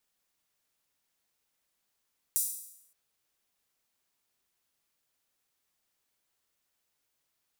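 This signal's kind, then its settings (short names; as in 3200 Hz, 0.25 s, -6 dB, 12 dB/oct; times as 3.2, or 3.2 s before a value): open hi-hat length 0.57 s, high-pass 8400 Hz, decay 0.77 s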